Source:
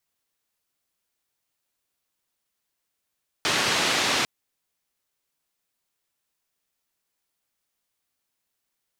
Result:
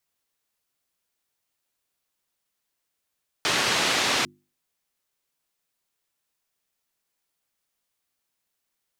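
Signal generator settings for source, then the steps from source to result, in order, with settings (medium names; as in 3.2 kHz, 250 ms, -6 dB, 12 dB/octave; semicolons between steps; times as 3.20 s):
noise band 130–4300 Hz, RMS -23.5 dBFS 0.80 s
hum notches 50/100/150/200/250/300/350 Hz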